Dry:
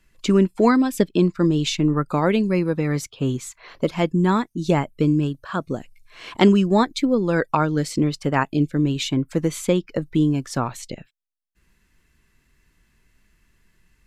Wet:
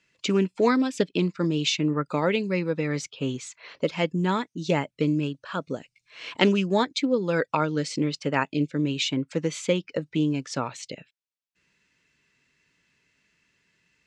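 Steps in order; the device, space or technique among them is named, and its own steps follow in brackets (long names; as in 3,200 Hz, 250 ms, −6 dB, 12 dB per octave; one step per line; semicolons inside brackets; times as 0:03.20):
full-range speaker at full volume (highs frequency-modulated by the lows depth 0.11 ms; loudspeaker in its box 200–7,000 Hz, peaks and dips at 220 Hz −7 dB, 350 Hz −7 dB, 740 Hz −7 dB, 1,100 Hz −6 dB, 1,600 Hz −3 dB, 2,600 Hz +3 dB)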